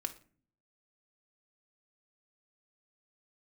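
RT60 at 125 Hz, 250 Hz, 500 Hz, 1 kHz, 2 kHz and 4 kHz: 0.85 s, 0.80 s, 0.50 s, 0.40 s, 0.40 s, 0.35 s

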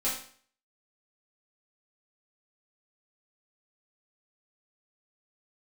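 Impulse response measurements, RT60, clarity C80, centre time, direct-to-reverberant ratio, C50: 0.50 s, 8.5 dB, 38 ms, -9.0 dB, 4.0 dB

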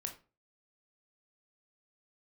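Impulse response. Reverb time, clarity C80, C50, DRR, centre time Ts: 0.35 s, 17.0 dB, 11.5 dB, 3.5 dB, 13 ms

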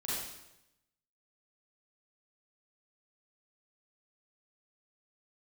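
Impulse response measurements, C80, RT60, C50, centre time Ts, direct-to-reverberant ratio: 2.0 dB, 0.90 s, -3.0 dB, 85 ms, -9.0 dB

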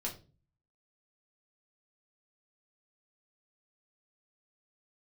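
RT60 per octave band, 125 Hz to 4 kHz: 0.70 s, 0.55 s, 0.40 s, 0.30 s, 0.25 s, 0.25 s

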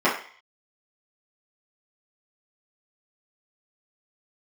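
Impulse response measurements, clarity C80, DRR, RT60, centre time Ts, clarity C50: 11.0 dB, -10.5 dB, 0.45 s, 30 ms, 6.5 dB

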